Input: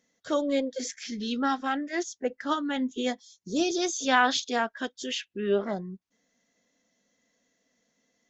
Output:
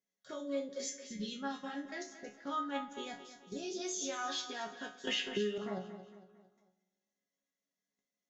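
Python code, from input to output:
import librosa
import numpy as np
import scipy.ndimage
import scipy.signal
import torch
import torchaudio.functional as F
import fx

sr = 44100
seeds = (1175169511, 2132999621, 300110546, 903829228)

p1 = fx.low_shelf(x, sr, hz=64.0, db=-11.0)
p2 = fx.level_steps(p1, sr, step_db=18)
p3 = fx.resonator_bank(p2, sr, root=49, chord='sus4', decay_s=0.29)
p4 = p3 + fx.echo_feedback(p3, sr, ms=226, feedback_pct=44, wet_db=-12.5, dry=0)
p5 = fx.rev_spring(p4, sr, rt60_s=1.6, pass_ms=(49,), chirp_ms=65, drr_db=16.0)
p6 = fx.band_squash(p5, sr, depth_pct=100, at=(5.07, 5.58))
y = F.gain(torch.from_numpy(p6), 11.0).numpy()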